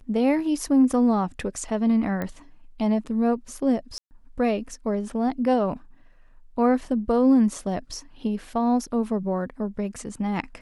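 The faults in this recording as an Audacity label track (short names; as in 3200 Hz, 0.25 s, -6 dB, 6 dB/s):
2.220000	2.220000	pop -17 dBFS
3.980000	4.110000	gap 0.129 s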